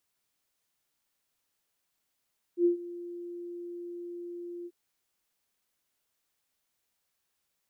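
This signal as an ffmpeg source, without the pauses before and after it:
-f lavfi -i "aevalsrc='0.112*sin(2*PI*348*t)':d=2.138:s=44100,afade=t=in:d=0.081,afade=t=out:st=0.081:d=0.115:silence=0.119,afade=t=out:st=2.09:d=0.048"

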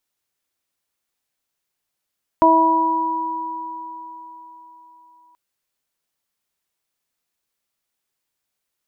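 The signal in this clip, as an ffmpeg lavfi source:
-f lavfi -i "aevalsrc='0.168*pow(10,-3*t/3.1)*sin(2*PI*325*t)+0.188*pow(10,-3*t/1.34)*sin(2*PI*650*t)+0.299*pow(10,-3*t/4.33)*sin(2*PI*975*t)':d=2.93:s=44100"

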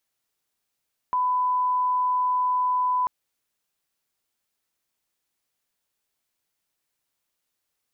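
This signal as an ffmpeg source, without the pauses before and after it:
-f lavfi -i "sine=f=1000:d=1.94:r=44100,volume=-1.94dB"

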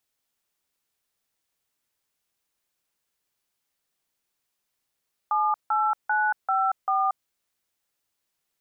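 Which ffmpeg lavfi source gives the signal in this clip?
-f lavfi -i "aevalsrc='0.0708*clip(min(mod(t,0.392),0.231-mod(t,0.392))/0.002,0,1)*(eq(floor(t/0.392),0)*(sin(2*PI*852*mod(t,0.392))+sin(2*PI*1209*mod(t,0.392)))+eq(floor(t/0.392),1)*(sin(2*PI*852*mod(t,0.392))+sin(2*PI*1336*mod(t,0.392)))+eq(floor(t/0.392),2)*(sin(2*PI*852*mod(t,0.392))+sin(2*PI*1477*mod(t,0.392)))+eq(floor(t/0.392),3)*(sin(2*PI*770*mod(t,0.392))+sin(2*PI*1336*mod(t,0.392)))+eq(floor(t/0.392),4)*(sin(2*PI*770*mod(t,0.392))+sin(2*PI*1209*mod(t,0.392))))':d=1.96:s=44100"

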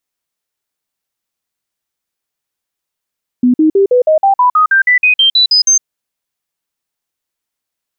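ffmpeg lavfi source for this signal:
-f lavfi -i "aevalsrc='0.531*clip(min(mod(t,0.16),0.11-mod(t,0.16))/0.005,0,1)*sin(2*PI*248*pow(2,floor(t/0.16)/3)*mod(t,0.16))':d=2.4:s=44100"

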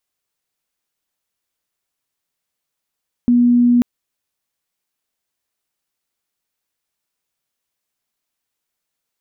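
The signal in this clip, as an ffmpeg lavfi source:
-f lavfi -i "sine=f=242:d=0.54:r=44100,volume=9.06dB"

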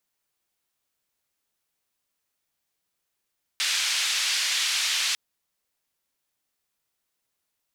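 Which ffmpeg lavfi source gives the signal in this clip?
-f lavfi -i "anoisesrc=c=white:d=1.55:r=44100:seed=1,highpass=f=2200,lowpass=f=4900,volume=-11.9dB"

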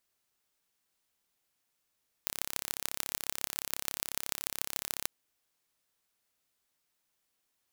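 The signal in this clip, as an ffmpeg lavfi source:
-f lavfi -i "aevalsrc='0.708*eq(mod(n,1293),0)*(0.5+0.5*eq(mod(n,6465),0))':d=2.8:s=44100"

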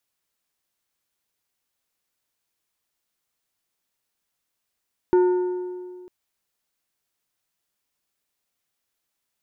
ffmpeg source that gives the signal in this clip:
-f lavfi -i "aevalsrc='0.237*pow(10,-3*t/2)*sin(2*PI*362*t)+0.0596*pow(10,-3*t/1.519)*sin(2*PI*905*t)+0.015*pow(10,-3*t/1.32)*sin(2*PI*1448*t)+0.00376*pow(10,-3*t/1.234)*sin(2*PI*1810*t)+0.000944*pow(10,-3*t/1.141)*sin(2*PI*2353*t)':d=0.95:s=44100"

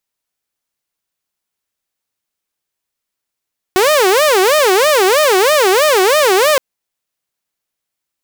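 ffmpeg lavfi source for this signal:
-f lavfi -i "aevalsrc='0.501*(2*mod((493*t-125/(2*PI*3.1)*sin(2*PI*3.1*t)),1)-1)':d=2.82:s=44100"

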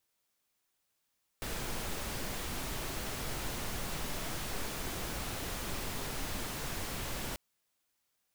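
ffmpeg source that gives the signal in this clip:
-f lavfi -i "anoisesrc=c=pink:a=0.0684:d=5.94:r=44100:seed=1"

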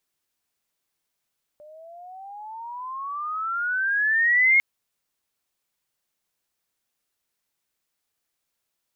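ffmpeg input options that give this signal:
-f lavfi -i "aevalsrc='pow(10,(-13.5+30*(t/3-1))/20)*sin(2*PI*592*3/(22.5*log(2)/12)*(exp(22.5*log(2)/12*t/3)-1))':d=3:s=44100"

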